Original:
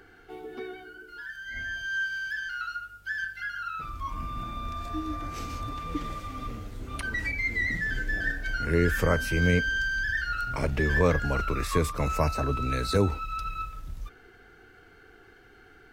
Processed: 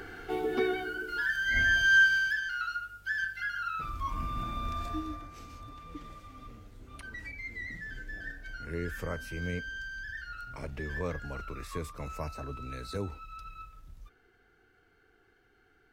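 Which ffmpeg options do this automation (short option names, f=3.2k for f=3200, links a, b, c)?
-af "volume=9.5dB,afade=t=out:st=1.94:d=0.47:silence=0.334965,afade=t=out:st=4.81:d=0.47:silence=0.251189"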